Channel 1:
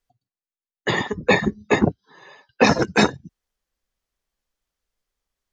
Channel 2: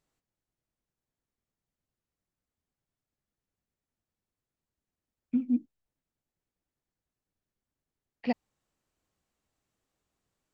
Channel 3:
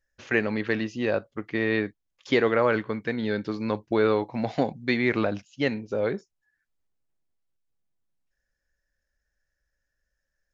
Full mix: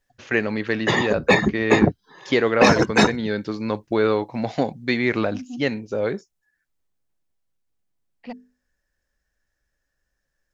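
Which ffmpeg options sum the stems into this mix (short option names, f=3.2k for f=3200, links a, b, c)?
-filter_complex "[0:a]acontrast=36,volume=-3.5dB[a];[1:a]asoftclip=type=tanh:threshold=-19dB,bandreject=f=50:t=h:w=6,bandreject=f=100:t=h:w=6,bandreject=f=150:t=h:w=6,bandreject=f=200:t=h:w=6,bandreject=f=250:t=h:w=6,bandreject=f=300:t=h:w=6,bandreject=f=350:t=h:w=6,bandreject=f=400:t=h:w=6,bandreject=f=450:t=h:w=6,volume=-3.5dB[b];[2:a]adynamicequalizer=threshold=0.00447:dfrequency=5300:dqfactor=0.7:tfrequency=5300:tqfactor=0.7:attack=5:release=100:ratio=0.375:range=3.5:mode=boostabove:tftype=highshelf,volume=2.5dB[c];[a][b][c]amix=inputs=3:normalize=0"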